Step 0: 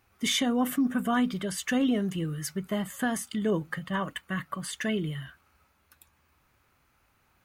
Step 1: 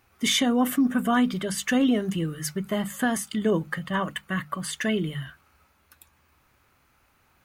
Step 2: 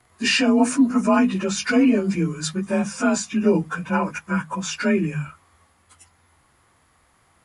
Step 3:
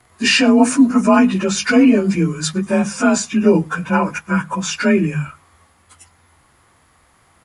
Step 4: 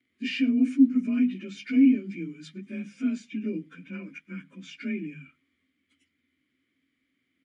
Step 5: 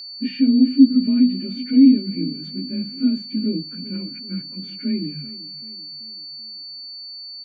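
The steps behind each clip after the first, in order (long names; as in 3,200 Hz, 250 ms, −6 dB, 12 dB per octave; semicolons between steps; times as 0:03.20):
mains-hum notches 50/100/150/200 Hz; level +4 dB
partials spread apart or drawn together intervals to 91%; level +6.5 dB
slap from a distant wall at 18 metres, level −28 dB; level +5.5 dB
formant filter i; level −5.5 dB
spectral tilt −4.5 dB per octave; repeating echo 385 ms, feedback 51%, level −17.5 dB; steady tone 4,500 Hz −32 dBFS; level −1 dB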